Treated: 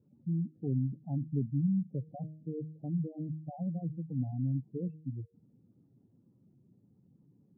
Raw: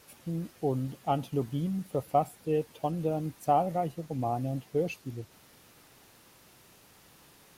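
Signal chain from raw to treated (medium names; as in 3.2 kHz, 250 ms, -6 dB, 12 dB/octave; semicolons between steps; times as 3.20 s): de-hum 155.9 Hz, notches 4; spectral gate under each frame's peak -10 dB strong; Butterworth band-pass 170 Hz, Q 1.1; trim +3 dB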